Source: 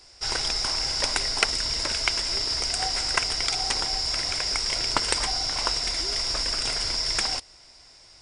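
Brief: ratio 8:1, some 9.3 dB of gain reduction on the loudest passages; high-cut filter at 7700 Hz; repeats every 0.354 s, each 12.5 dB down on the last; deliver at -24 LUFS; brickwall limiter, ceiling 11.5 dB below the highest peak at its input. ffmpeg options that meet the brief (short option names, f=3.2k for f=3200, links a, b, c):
-af "lowpass=7.7k,acompressor=threshold=-29dB:ratio=8,alimiter=limit=-23dB:level=0:latency=1,aecho=1:1:354|708|1062:0.237|0.0569|0.0137,volume=7.5dB"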